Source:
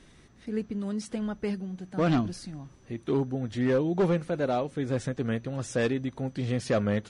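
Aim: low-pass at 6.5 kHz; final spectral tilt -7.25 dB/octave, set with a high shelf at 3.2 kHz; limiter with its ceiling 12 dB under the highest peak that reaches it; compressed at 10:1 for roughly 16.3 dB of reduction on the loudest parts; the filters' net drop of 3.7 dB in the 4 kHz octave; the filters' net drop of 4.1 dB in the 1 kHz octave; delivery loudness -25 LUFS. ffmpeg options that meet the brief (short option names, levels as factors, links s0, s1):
-af "lowpass=6500,equalizer=f=1000:t=o:g=-6.5,highshelf=f=3200:g=3.5,equalizer=f=4000:t=o:g=-6.5,acompressor=threshold=0.0112:ratio=10,volume=15.8,alimiter=limit=0.141:level=0:latency=1"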